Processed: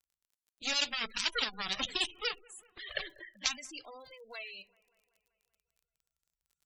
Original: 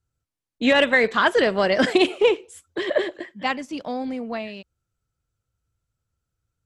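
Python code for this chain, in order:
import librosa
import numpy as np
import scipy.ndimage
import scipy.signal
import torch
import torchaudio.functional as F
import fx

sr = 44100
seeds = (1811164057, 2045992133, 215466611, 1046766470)

p1 = fx.env_flanger(x, sr, rest_ms=5.0, full_db=-15.5)
p2 = fx.cheby_harmonics(p1, sr, harmonics=(7, 8), levels_db=(-11, -21), full_scale_db=-7.5)
p3 = fx.rider(p2, sr, range_db=5, speed_s=0.5)
p4 = fx.tone_stack(p3, sr, knobs='5-5-5')
p5 = p4 + fx.echo_wet_lowpass(p4, sr, ms=192, feedback_pct=62, hz=2100.0, wet_db=-23, dry=0)
p6 = fx.room_shoebox(p5, sr, seeds[0], volume_m3=160.0, walls='furnished', distance_m=0.35)
p7 = fx.spec_gate(p6, sr, threshold_db=-15, keep='strong')
p8 = fx.dmg_crackle(p7, sr, seeds[1], per_s=26.0, level_db=-61.0)
p9 = fx.high_shelf(p8, sr, hz=3500.0, db=10.5)
y = p9 * 10.0 ** (-2.0 / 20.0)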